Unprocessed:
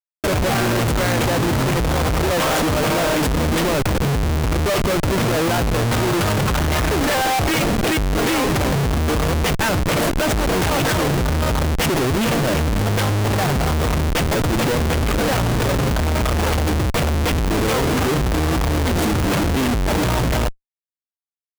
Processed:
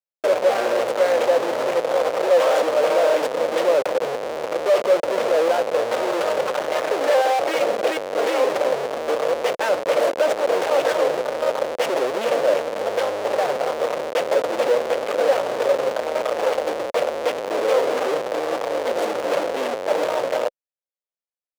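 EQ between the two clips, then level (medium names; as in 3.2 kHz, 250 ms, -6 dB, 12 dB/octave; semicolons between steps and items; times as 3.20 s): resonant high-pass 530 Hz, resonance Q 4.9; treble shelf 8.5 kHz -12 dB; -5.5 dB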